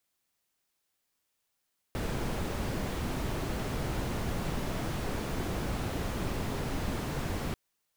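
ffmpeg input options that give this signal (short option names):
-f lavfi -i "anoisesrc=c=brown:a=0.111:d=5.59:r=44100:seed=1"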